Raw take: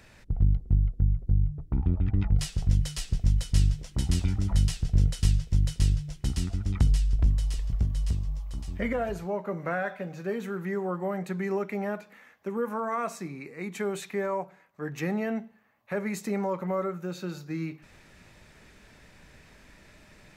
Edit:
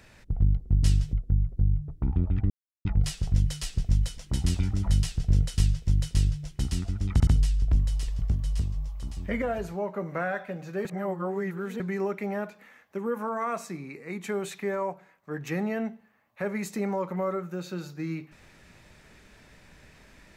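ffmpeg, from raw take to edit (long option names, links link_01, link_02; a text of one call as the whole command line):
ffmpeg -i in.wav -filter_complex "[0:a]asplit=9[link_01][link_02][link_03][link_04][link_05][link_06][link_07][link_08][link_09];[link_01]atrim=end=0.832[link_10];[link_02]atrim=start=3.528:end=3.832[link_11];[link_03]atrim=start=0.828:end=2.2,asetpts=PTS-STARTPTS,afade=type=out:start_time=1.368:duration=0.004:curve=hsin,apad=pad_dur=0.35[link_12];[link_04]atrim=start=2.2:end=3.532,asetpts=PTS-STARTPTS,afade=type=in:duration=0.004:curve=hsin[link_13];[link_05]atrim=start=3.828:end=6.852[link_14];[link_06]atrim=start=6.778:end=6.852[link_15];[link_07]atrim=start=6.778:end=10.362[link_16];[link_08]atrim=start=10.358:end=11.312,asetpts=PTS-STARTPTS,areverse[link_17];[link_09]atrim=start=11.308[link_18];[link_10][link_11]acrossfade=duration=0.004:curve1=hsin:curve2=hsin[link_19];[link_12][link_13]concat=n=2:v=0:a=1[link_20];[link_19][link_20]acrossfade=duration=0.004:curve1=hsin:curve2=hsin[link_21];[link_21][link_14]acrossfade=duration=0.004:curve1=hsin:curve2=hsin[link_22];[link_22][link_15]acrossfade=duration=0.004:curve1=hsin:curve2=hsin[link_23];[link_23][link_16]acrossfade=duration=0.004:curve1=hsin:curve2=hsin[link_24];[link_24][link_17]acrossfade=duration=0.004:curve1=hsin:curve2=hsin[link_25];[link_25][link_18]acrossfade=duration=0.004:curve1=hsin:curve2=hsin" out.wav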